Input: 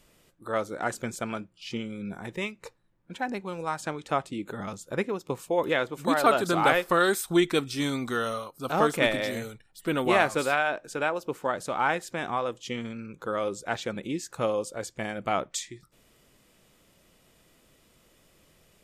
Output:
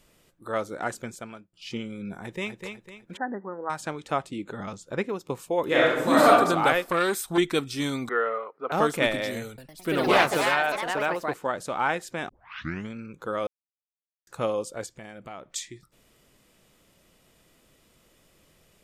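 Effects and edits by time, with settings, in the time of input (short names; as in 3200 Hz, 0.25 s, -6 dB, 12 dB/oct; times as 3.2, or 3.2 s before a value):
0.81–1.53 fade out, to -21 dB
2.21–2.64 echo throw 0.25 s, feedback 40%, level -6.5 dB
3.17–3.7 brick-wall FIR band-pass 180–2000 Hz
4.43–5.05 LPF 7300 Hz
5.66–6.28 reverb throw, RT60 0.86 s, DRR -5.5 dB
6.88–7.38 core saturation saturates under 850 Hz
8.09–8.72 speaker cabinet 420–2100 Hz, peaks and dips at 440 Hz +10 dB, 1300 Hz +3 dB, 2000 Hz +10 dB
9.47–11.56 echoes that change speed 0.108 s, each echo +3 st, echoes 3
12.29 tape start 0.60 s
13.47–14.27 mute
14.86–15.56 compressor 2.5:1, threshold -43 dBFS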